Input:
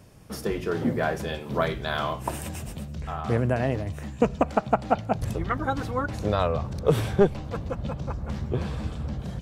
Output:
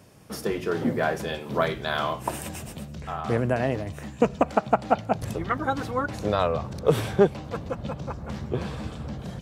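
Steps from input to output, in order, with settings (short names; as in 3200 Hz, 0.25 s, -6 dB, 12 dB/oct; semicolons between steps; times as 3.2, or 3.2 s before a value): HPF 150 Hz 6 dB/oct; gain +1.5 dB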